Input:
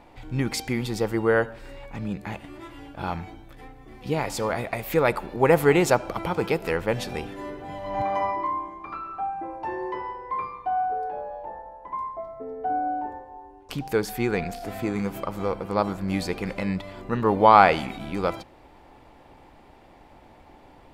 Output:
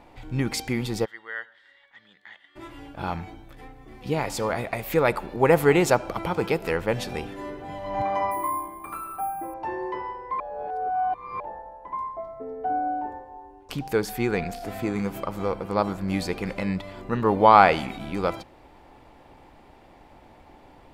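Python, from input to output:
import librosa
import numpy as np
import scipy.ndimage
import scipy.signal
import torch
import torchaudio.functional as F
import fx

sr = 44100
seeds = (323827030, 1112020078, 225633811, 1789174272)

y = fx.double_bandpass(x, sr, hz=2500.0, octaves=0.77, at=(1.04, 2.55), fade=0.02)
y = fx.resample_bad(y, sr, factor=4, down='filtered', up='hold', at=(8.31, 9.54))
y = fx.edit(y, sr, fx.reverse_span(start_s=10.4, length_s=1.0), tone=tone)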